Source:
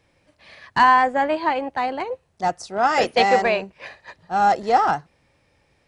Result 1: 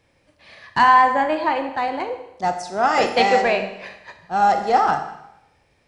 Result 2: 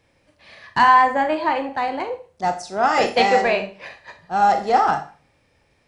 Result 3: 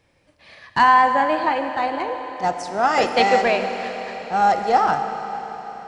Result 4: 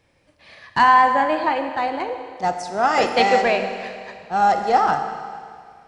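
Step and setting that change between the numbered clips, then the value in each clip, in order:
four-comb reverb, RT60: 0.84, 0.37, 4.6, 2.1 seconds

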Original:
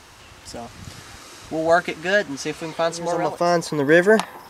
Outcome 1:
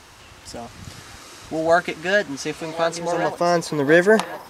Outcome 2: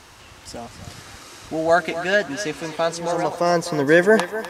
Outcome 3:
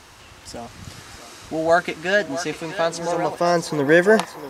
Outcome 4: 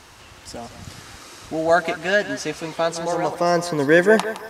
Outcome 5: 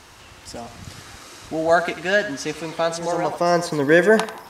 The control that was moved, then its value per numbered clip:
feedback echo with a high-pass in the loop, delay time: 1,082, 251, 643, 165, 92 milliseconds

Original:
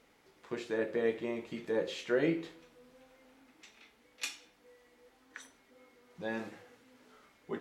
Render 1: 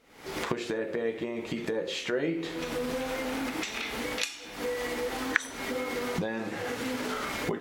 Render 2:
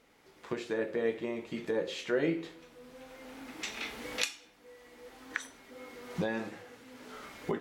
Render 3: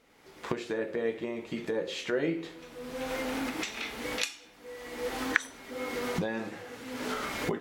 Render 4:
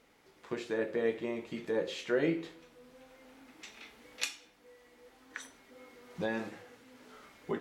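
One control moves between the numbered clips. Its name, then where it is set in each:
camcorder AGC, rising by: 86, 14, 35, 5.3 dB per second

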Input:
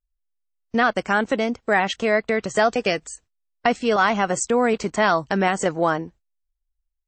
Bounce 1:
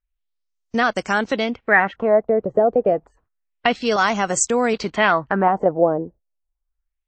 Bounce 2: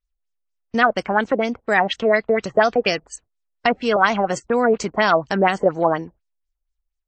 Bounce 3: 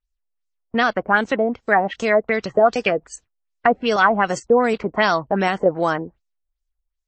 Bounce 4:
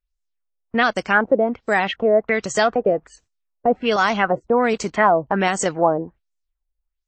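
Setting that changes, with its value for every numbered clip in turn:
auto-filter low-pass, speed: 0.29, 4.2, 2.6, 1.3 Hertz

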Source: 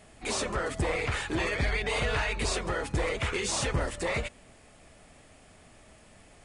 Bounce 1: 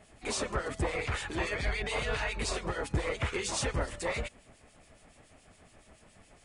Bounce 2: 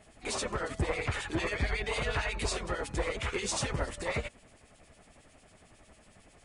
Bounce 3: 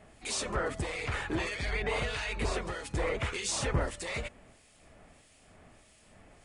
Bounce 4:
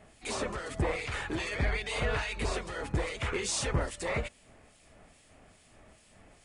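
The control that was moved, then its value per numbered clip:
two-band tremolo in antiphase, speed: 7.1, 11, 1.6, 2.4 Hertz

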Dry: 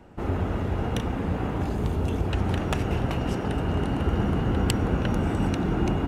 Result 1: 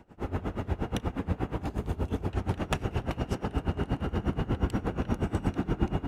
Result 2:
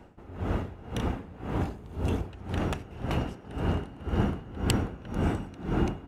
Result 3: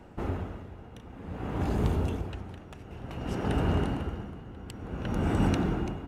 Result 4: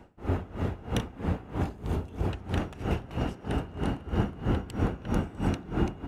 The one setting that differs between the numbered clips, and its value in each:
tremolo with a sine in dB, speed: 8.4, 1.9, 0.55, 3.1 Hertz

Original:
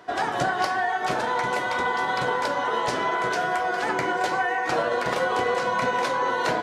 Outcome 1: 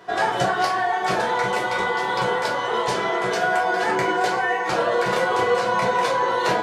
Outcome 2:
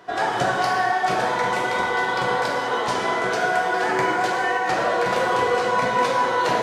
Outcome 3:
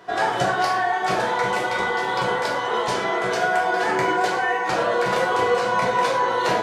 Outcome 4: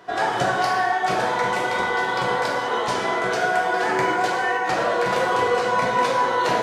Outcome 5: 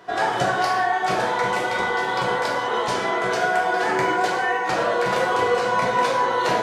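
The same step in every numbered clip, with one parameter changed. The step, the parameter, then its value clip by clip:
reverb whose tail is shaped and stops, gate: 80, 510, 150, 330, 220 milliseconds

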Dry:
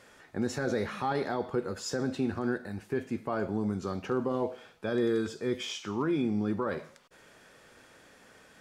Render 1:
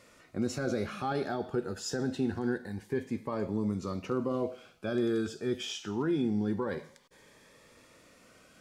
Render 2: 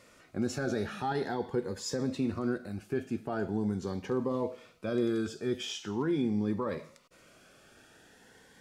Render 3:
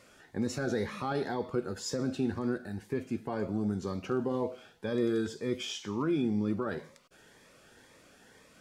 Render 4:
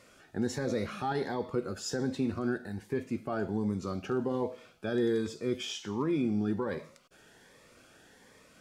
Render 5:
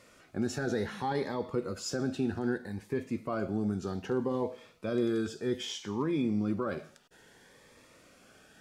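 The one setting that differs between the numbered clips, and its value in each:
phaser whose notches keep moving one way, speed: 0.25, 0.43, 2, 1.3, 0.63 Hertz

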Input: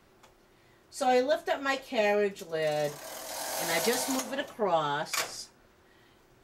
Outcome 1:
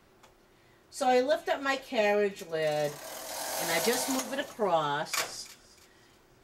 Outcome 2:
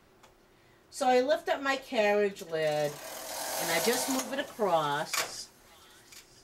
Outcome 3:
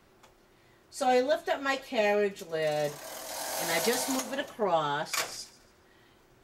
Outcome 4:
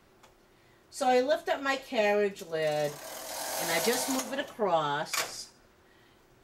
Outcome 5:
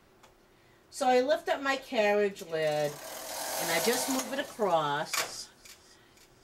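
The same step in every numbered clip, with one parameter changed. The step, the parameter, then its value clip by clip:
delay with a high-pass on its return, delay time: 320, 987, 143, 79, 517 milliseconds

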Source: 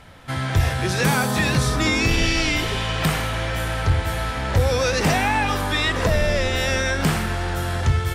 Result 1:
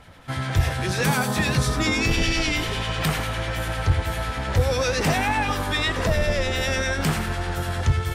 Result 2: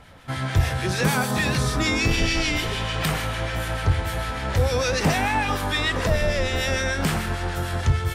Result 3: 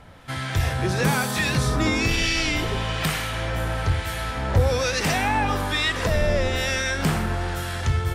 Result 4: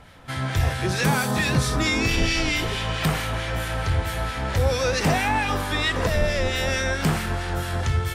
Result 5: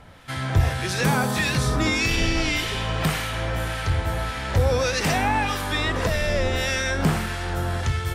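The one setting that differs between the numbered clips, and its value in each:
two-band tremolo in antiphase, speed: 10, 6.7, 1.1, 4.5, 1.7 Hertz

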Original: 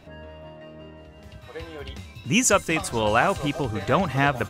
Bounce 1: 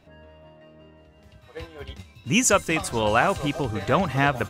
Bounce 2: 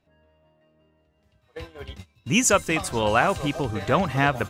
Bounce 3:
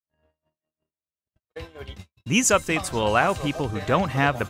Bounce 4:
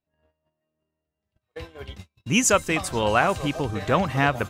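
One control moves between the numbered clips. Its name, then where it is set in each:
noise gate, range: −7, −20, −60, −38 decibels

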